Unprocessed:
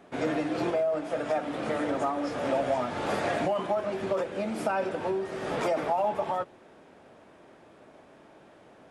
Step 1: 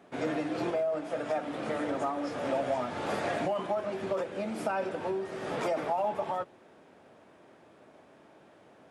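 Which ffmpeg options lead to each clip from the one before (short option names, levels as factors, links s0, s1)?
-af "highpass=68,volume=0.708"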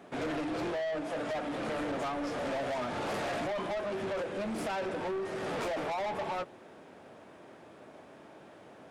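-af "asoftclip=type=tanh:threshold=0.0158,volume=1.68"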